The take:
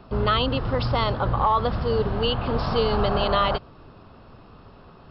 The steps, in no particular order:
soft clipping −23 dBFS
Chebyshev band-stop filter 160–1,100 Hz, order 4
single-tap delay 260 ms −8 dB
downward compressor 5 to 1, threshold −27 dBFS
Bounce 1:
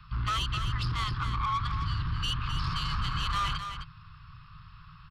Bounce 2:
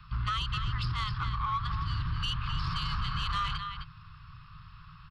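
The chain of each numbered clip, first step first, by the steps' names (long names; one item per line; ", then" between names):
Chebyshev band-stop filter, then soft clipping, then downward compressor, then single-tap delay
Chebyshev band-stop filter, then downward compressor, then single-tap delay, then soft clipping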